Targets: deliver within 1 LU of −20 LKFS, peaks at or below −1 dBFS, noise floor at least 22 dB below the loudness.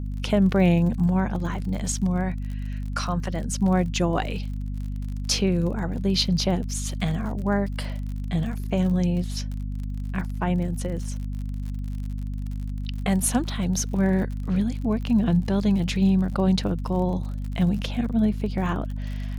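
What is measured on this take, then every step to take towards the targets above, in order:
crackle rate 45 per second; mains hum 50 Hz; hum harmonics up to 250 Hz; level of the hum −27 dBFS; integrated loudness −25.5 LKFS; sample peak −8.0 dBFS; target loudness −20.0 LKFS
→ click removal
hum removal 50 Hz, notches 5
level +5.5 dB

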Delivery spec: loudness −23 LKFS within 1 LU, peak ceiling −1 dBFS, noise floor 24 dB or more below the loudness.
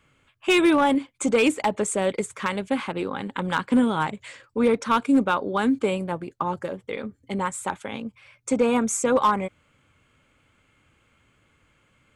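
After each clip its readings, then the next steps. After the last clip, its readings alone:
share of clipped samples 0.3%; peaks flattened at −12.5 dBFS; integrated loudness −24.0 LKFS; sample peak −12.5 dBFS; target loudness −23.0 LKFS
→ clipped peaks rebuilt −12.5 dBFS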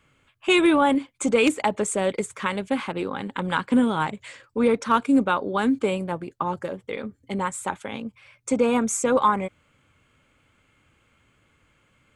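share of clipped samples 0.0%; integrated loudness −24.0 LKFS; sample peak −3.5 dBFS; target loudness −23.0 LKFS
→ level +1 dB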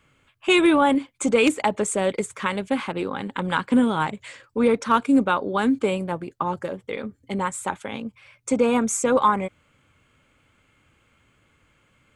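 integrated loudness −23.0 LKFS; sample peak −2.5 dBFS; background noise floor −64 dBFS

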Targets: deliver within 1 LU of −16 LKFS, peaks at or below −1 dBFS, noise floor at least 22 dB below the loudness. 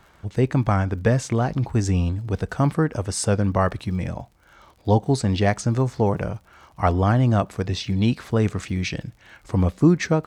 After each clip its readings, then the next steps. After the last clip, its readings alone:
crackle rate 51 per second; integrated loudness −22.5 LKFS; sample peak −3.5 dBFS; target loudness −16.0 LKFS
→ click removal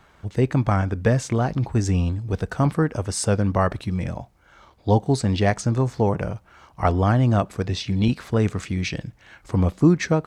crackle rate 0.19 per second; integrated loudness −22.5 LKFS; sample peak −3.5 dBFS; target loudness −16.0 LKFS
→ level +6.5 dB
brickwall limiter −1 dBFS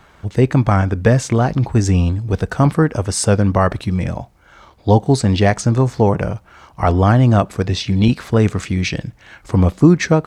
integrated loudness −16.5 LKFS; sample peak −1.0 dBFS; background noise floor −49 dBFS

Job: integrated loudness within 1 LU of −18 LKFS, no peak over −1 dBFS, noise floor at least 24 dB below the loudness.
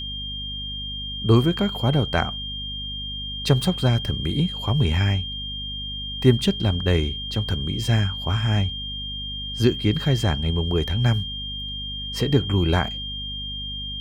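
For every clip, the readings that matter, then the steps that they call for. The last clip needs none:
mains hum 50 Hz; hum harmonics up to 250 Hz; level of the hum −34 dBFS; interfering tone 3,200 Hz; level of the tone −30 dBFS; integrated loudness −23.5 LKFS; sample peak −2.5 dBFS; target loudness −18.0 LKFS
→ hum removal 50 Hz, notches 5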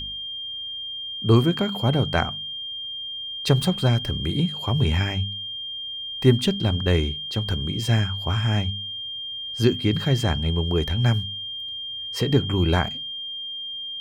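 mains hum none found; interfering tone 3,200 Hz; level of the tone −30 dBFS
→ notch filter 3,200 Hz, Q 30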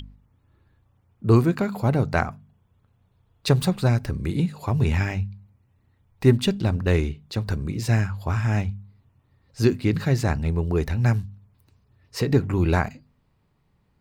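interfering tone none found; integrated loudness −23.5 LKFS; sample peak −3.5 dBFS; target loudness −18.0 LKFS
→ level +5.5 dB
brickwall limiter −1 dBFS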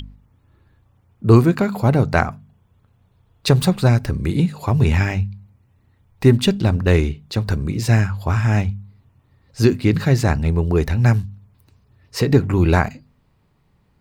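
integrated loudness −18.5 LKFS; sample peak −1.0 dBFS; background noise floor −61 dBFS

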